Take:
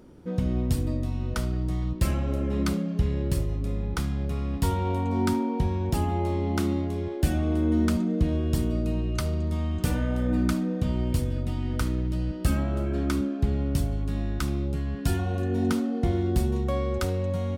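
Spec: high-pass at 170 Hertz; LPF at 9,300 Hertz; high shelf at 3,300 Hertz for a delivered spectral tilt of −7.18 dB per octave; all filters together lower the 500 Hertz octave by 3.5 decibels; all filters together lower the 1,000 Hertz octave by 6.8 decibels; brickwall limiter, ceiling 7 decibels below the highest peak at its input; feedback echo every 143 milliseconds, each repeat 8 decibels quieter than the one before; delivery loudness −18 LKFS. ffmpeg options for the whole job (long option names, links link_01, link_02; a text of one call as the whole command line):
ffmpeg -i in.wav -af "highpass=170,lowpass=9300,equalizer=frequency=500:width_type=o:gain=-3,equalizer=frequency=1000:width_type=o:gain=-7,highshelf=frequency=3300:gain=-7.5,alimiter=limit=-22.5dB:level=0:latency=1,aecho=1:1:143|286|429|572|715:0.398|0.159|0.0637|0.0255|0.0102,volume=15dB" out.wav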